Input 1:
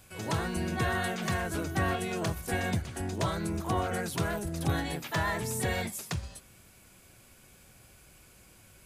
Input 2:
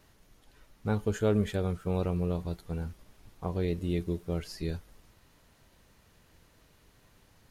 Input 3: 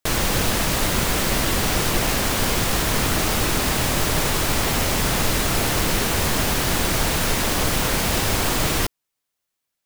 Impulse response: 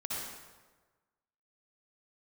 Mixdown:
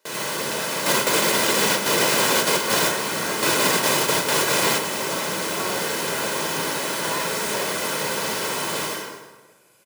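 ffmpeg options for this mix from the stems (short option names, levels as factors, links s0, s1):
-filter_complex "[0:a]adelay=1900,volume=0.841[s0];[1:a]bass=f=250:g=-14,treble=f=4000:g=4,acompressor=threshold=0.00708:ratio=6,volume=0.562,asplit=2[s1][s2];[2:a]equalizer=f=15000:t=o:w=0.27:g=-5.5,alimiter=limit=0.188:level=0:latency=1,volume=1.33,asplit=2[s3][s4];[s4]volume=0.501[s5];[s2]apad=whole_len=434534[s6];[s3][s6]sidechaingate=range=0.0224:threshold=0.00178:ratio=16:detection=peak[s7];[3:a]atrim=start_sample=2205[s8];[s5][s8]afir=irnorm=-1:irlink=0[s9];[s0][s1][s7][s9]amix=inputs=4:normalize=0,highpass=f=180:w=0.5412,highpass=f=180:w=1.3066,aecho=1:1:2:0.51"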